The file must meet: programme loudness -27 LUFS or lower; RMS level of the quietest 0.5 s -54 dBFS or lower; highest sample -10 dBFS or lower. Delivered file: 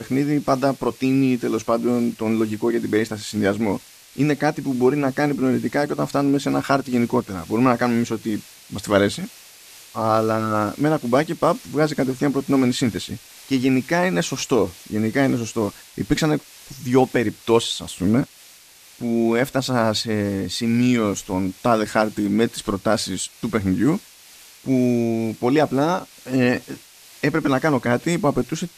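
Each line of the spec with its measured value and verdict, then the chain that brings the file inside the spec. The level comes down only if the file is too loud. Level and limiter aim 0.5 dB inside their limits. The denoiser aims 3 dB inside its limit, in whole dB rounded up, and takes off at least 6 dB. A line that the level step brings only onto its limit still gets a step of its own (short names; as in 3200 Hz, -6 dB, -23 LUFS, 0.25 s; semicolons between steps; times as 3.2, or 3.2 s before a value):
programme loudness -21.0 LUFS: fail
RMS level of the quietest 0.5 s -48 dBFS: fail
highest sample -3.5 dBFS: fail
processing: gain -6.5 dB; limiter -10.5 dBFS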